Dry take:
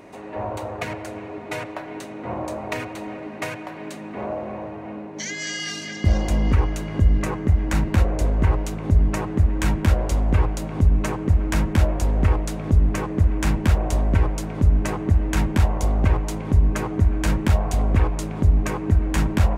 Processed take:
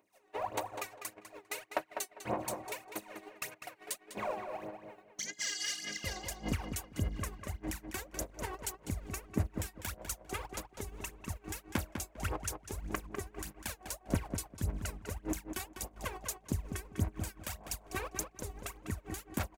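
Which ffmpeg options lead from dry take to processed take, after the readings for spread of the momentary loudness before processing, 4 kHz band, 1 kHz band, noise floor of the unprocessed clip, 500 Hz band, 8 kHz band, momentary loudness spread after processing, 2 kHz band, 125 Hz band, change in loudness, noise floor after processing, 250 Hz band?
12 LU, -8.0 dB, -12.0 dB, -36 dBFS, -14.0 dB, -4.0 dB, 7 LU, -11.5 dB, -21.0 dB, -17.5 dB, -64 dBFS, -17.0 dB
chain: -filter_complex "[0:a]aemphasis=mode=production:type=riaa,acompressor=threshold=-32dB:ratio=12,agate=range=-36dB:threshold=-34dB:ratio=16:detection=peak,alimiter=level_in=5dB:limit=-24dB:level=0:latency=1:release=343,volume=-5dB,aphaser=in_gain=1:out_gain=1:delay=2.7:decay=0.76:speed=1.7:type=sinusoidal,asplit=2[a][b];[b]adelay=200,lowpass=f=3.9k:p=1,volume=-7dB,asplit=2[c][d];[d]adelay=200,lowpass=f=3.9k:p=1,volume=0.18,asplit=2[e][f];[f]adelay=200,lowpass=f=3.9k:p=1,volume=0.18[g];[c][e][g]amix=inputs=3:normalize=0[h];[a][h]amix=inputs=2:normalize=0,volume=1.5dB"

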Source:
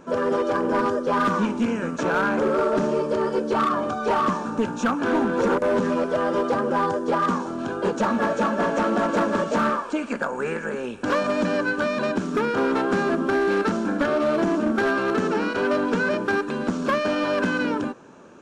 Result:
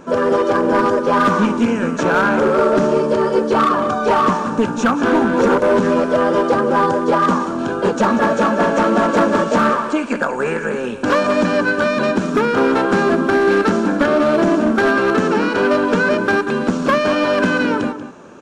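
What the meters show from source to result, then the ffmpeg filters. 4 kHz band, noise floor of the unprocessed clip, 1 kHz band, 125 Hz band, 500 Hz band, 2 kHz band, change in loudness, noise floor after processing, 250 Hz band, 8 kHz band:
+7.0 dB, -32 dBFS, +7.5 dB, +7.5 dB, +7.5 dB, +7.5 dB, +7.0 dB, -25 dBFS, +7.0 dB, +7.0 dB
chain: -filter_complex "[0:a]asplit=2[a][b];[b]adelay=186.6,volume=-11dB,highshelf=f=4k:g=-4.2[c];[a][c]amix=inputs=2:normalize=0,volume=7dB"

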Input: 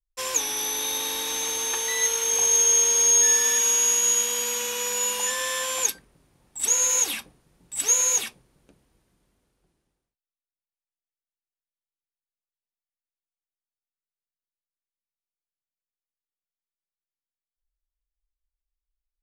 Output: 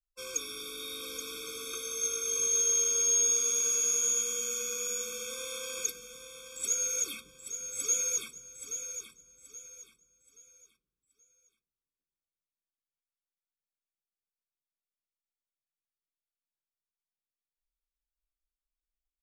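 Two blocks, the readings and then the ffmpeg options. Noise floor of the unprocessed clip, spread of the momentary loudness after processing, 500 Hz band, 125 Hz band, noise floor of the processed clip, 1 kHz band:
under -85 dBFS, 20 LU, -7.5 dB, n/a, under -85 dBFS, -16.0 dB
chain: -af "aecho=1:1:827|1654|2481|3308:0.355|0.114|0.0363|0.0116,afftfilt=real='re*eq(mod(floor(b*sr/1024/530),2),0)':imag='im*eq(mod(floor(b*sr/1024/530),2),0)':win_size=1024:overlap=0.75,volume=-8dB"

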